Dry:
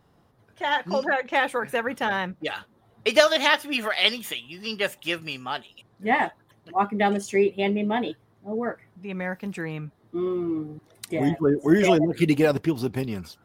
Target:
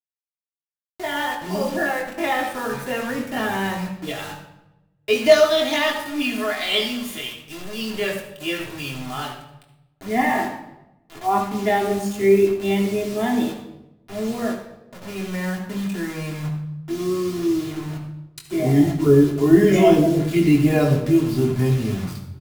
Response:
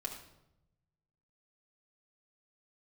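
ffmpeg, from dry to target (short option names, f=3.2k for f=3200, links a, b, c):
-filter_complex "[0:a]bass=f=250:g=9,treble=f=4k:g=1,acrossover=split=170|1200|3000[a][b][c][d];[c]asoftclip=type=tanh:threshold=-21dB[e];[a][b][e][d]amix=inputs=4:normalize=0,atempo=0.6,acrusher=bits=5:mix=0:aa=0.000001,asplit=2[f][g];[g]adelay=21,volume=-10.5dB[h];[f][h]amix=inputs=2:normalize=0,asplit=2[i][j];[j]adelay=138,lowpass=f=4.5k:p=1,volume=-23dB,asplit=2[k][l];[l]adelay=138,lowpass=f=4.5k:p=1,volume=0.43,asplit=2[m][n];[n]adelay=138,lowpass=f=4.5k:p=1,volume=0.43[o];[i][k][m][o]amix=inputs=4:normalize=0[p];[1:a]atrim=start_sample=2205,asetrate=41454,aresample=44100[q];[p][q]afir=irnorm=-1:irlink=0"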